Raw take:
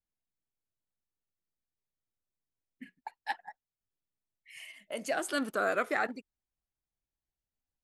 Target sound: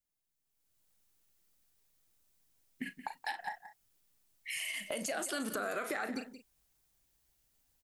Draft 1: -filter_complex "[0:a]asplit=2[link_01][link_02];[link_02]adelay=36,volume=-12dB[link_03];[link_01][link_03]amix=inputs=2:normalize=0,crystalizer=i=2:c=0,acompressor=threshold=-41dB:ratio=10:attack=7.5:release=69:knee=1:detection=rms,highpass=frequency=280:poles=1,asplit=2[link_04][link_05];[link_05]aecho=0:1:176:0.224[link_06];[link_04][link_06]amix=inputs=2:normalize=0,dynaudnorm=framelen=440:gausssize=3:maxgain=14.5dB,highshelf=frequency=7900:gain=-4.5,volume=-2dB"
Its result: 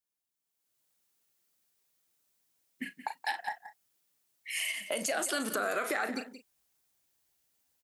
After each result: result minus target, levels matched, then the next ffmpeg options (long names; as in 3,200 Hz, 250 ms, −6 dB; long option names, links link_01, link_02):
downward compressor: peak gain reduction −5.5 dB; 250 Hz band −2.5 dB
-filter_complex "[0:a]asplit=2[link_01][link_02];[link_02]adelay=36,volume=-12dB[link_03];[link_01][link_03]amix=inputs=2:normalize=0,crystalizer=i=2:c=0,acompressor=threshold=-47dB:ratio=10:attack=7.5:release=69:knee=1:detection=rms,highpass=frequency=280:poles=1,asplit=2[link_04][link_05];[link_05]aecho=0:1:176:0.224[link_06];[link_04][link_06]amix=inputs=2:normalize=0,dynaudnorm=framelen=440:gausssize=3:maxgain=14.5dB,highshelf=frequency=7900:gain=-4.5,volume=-2dB"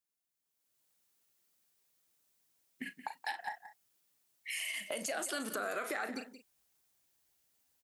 250 Hz band −3.0 dB
-filter_complex "[0:a]asplit=2[link_01][link_02];[link_02]adelay=36,volume=-12dB[link_03];[link_01][link_03]amix=inputs=2:normalize=0,crystalizer=i=2:c=0,acompressor=threshold=-47dB:ratio=10:attack=7.5:release=69:knee=1:detection=rms,asplit=2[link_04][link_05];[link_05]aecho=0:1:176:0.224[link_06];[link_04][link_06]amix=inputs=2:normalize=0,dynaudnorm=framelen=440:gausssize=3:maxgain=14.5dB,highshelf=frequency=7900:gain=-4.5,volume=-2dB"